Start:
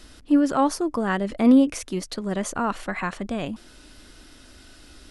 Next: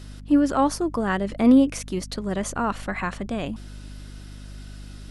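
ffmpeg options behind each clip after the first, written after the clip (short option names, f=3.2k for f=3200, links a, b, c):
-af "aeval=exprs='val(0)+0.0126*(sin(2*PI*50*n/s)+sin(2*PI*2*50*n/s)/2+sin(2*PI*3*50*n/s)/3+sin(2*PI*4*50*n/s)/4+sin(2*PI*5*50*n/s)/5)':c=same"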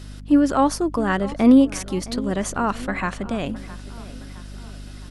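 -filter_complex "[0:a]asplit=2[a][b];[b]adelay=664,lowpass=f=4.6k:p=1,volume=-17.5dB,asplit=2[c][d];[d]adelay=664,lowpass=f=4.6k:p=1,volume=0.52,asplit=2[e][f];[f]adelay=664,lowpass=f=4.6k:p=1,volume=0.52,asplit=2[g][h];[h]adelay=664,lowpass=f=4.6k:p=1,volume=0.52[i];[a][c][e][g][i]amix=inputs=5:normalize=0,volume=2.5dB"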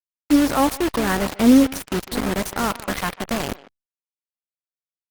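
-filter_complex "[0:a]acrusher=bits=3:mix=0:aa=0.000001,asplit=2[a][b];[b]adelay=150,highpass=300,lowpass=3.4k,asoftclip=type=hard:threshold=-13.5dB,volume=-17dB[c];[a][c]amix=inputs=2:normalize=0" -ar 48000 -c:a libopus -b:a 20k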